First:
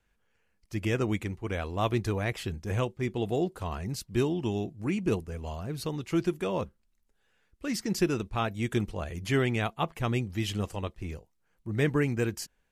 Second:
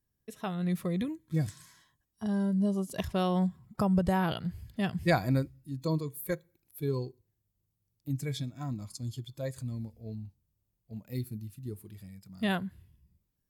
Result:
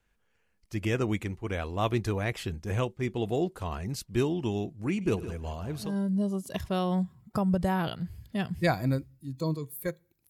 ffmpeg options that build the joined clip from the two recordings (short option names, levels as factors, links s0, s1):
-filter_complex "[0:a]asettb=1/sr,asplit=3[s0][s1][s2];[s0]atrim=end=4.914[s3];[s1]atrim=start=4.91:end=5.97,asetpts=PTS-STARTPTS,afade=t=in:d=0.004:c=qsin,afade=t=out:st=1.056:d=0.004:c=qsin,aecho=1:1:98|161:0.119|0.237,atrim=end_sample=46746[s4];[s2]atrim=start=5.966[s5];[s3][s4]acrossfade=d=0.004:c1=hsin:c2=qsin[s6];[s6][s5]acrossfade=d=0.004:c1=qsin:c2=hsin,apad=whole_dur=10.29,atrim=end=10.29,atrim=end=5.97,asetpts=PTS-STARTPTS[s7];[1:a]atrim=start=2.21:end=6.73,asetpts=PTS-STARTPTS[s8];[s7][s8]acrossfade=d=0.2:c1=tri:c2=tri"